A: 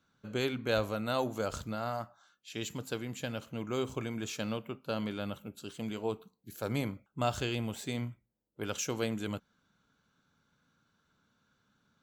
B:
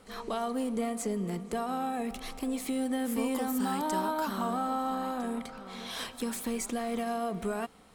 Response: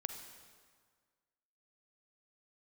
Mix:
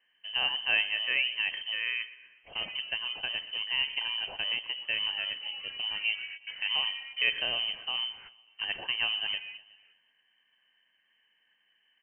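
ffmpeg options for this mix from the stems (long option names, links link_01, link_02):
-filter_complex "[0:a]bandreject=frequency=1800:width=11,volume=3dB,asplit=3[link_01][link_02][link_03];[link_02]volume=-17dB[link_04];[1:a]flanger=delay=18:depth=7.4:speed=0.82,adelay=2250,volume=-9dB[link_05];[link_03]apad=whole_len=449508[link_06];[link_05][link_06]sidechaingate=range=-20dB:threshold=-57dB:ratio=16:detection=peak[link_07];[link_04]aecho=0:1:122|244|366|488|610|732|854|976:1|0.53|0.281|0.149|0.0789|0.0418|0.0222|0.0117[link_08];[link_01][link_07][link_08]amix=inputs=3:normalize=0,lowpass=frequency=2700:width_type=q:width=0.5098,lowpass=frequency=2700:width_type=q:width=0.6013,lowpass=frequency=2700:width_type=q:width=0.9,lowpass=frequency=2700:width_type=q:width=2.563,afreqshift=-3200"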